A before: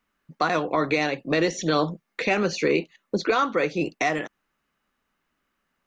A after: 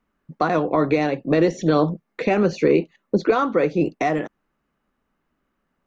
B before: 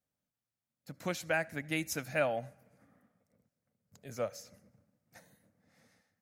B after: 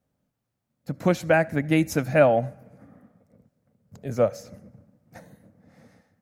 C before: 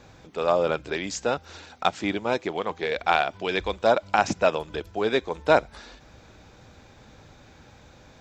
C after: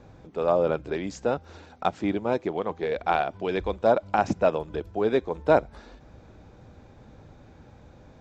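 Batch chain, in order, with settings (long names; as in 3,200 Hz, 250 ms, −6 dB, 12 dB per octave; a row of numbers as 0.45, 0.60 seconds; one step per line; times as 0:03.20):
tilt shelving filter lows +7 dB, about 1,300 Hz
normalise the peak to −6 dBFS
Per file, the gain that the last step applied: 0.0, +9.5, −4.5 decibels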